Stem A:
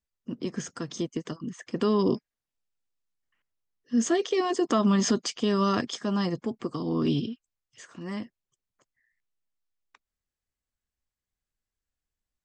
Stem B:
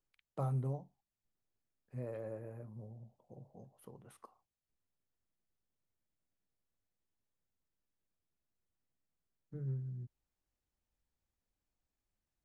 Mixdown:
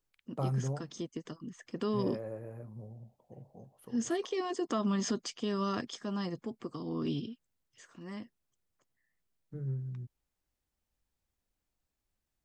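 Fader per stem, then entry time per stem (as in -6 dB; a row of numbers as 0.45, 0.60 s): -8.5, +3.0 dB; 0.00, 0.00 s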